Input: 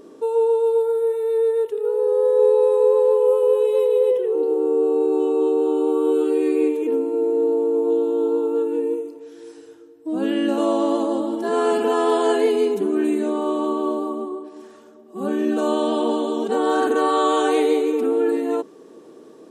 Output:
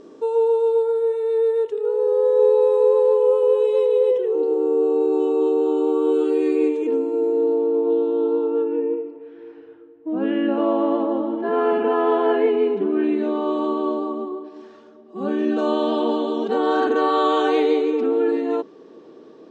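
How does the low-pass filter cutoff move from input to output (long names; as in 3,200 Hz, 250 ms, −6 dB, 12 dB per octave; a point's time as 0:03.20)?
low-pass filter 24 dB per octave
0:07.24 7,000 Hz
0:07.83 4,100 Hz
0:08.36 4,100 Hz
0:08.80 2,600 Hz
0:12.57 2,600 Hz
0:13.60 5,100 Hz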